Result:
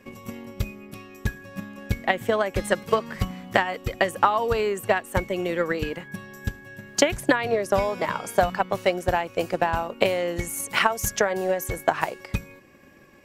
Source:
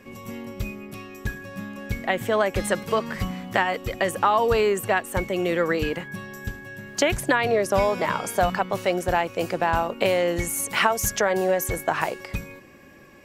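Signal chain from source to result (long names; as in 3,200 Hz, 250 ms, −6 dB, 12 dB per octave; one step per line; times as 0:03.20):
transient designer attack +8 dB, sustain −1 dB
level −4 dB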